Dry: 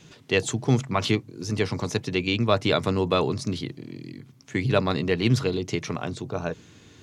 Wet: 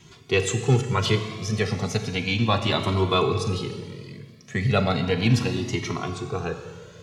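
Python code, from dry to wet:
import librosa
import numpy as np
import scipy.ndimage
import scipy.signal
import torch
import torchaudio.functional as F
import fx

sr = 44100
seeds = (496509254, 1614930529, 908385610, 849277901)

y = fx.notch_comb(x, sr, f0_hz=300.0)
y = fx.rev_schroeder(y, sr, rt60_s=1.8, comb_ms=28, drr_db=7.0)
y = fx.comb_cascade(y, sr, direction='rising', hz=0.34)
y = F.gain(torch.from_numpy(y), 6.5).numpy()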